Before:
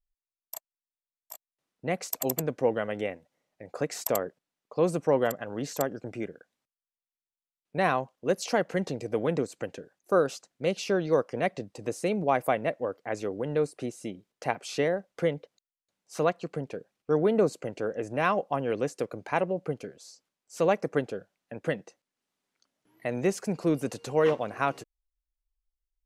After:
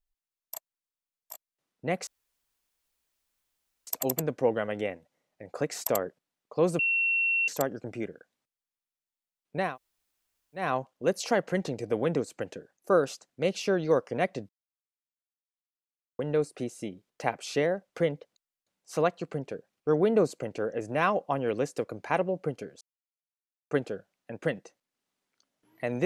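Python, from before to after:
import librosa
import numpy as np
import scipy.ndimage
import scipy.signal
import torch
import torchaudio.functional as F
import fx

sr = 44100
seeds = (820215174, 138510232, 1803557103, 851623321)

y = fx.edit(x, sr, fx.insert_room_tone(at_s=2.07, length_s=1.8),
    fx.bleep(start_s=4.99, length_s=0.69, hz=2720.0, db=-23.0),
    fx.insert_room_tone(at_s=7.86, length_s=0.98, crossfade_s=0.24),
    fx.silence(start_s=11.71, length_s=1.7),
    fx.silence(start_s=20.03, length_s=0.9), tone=tone)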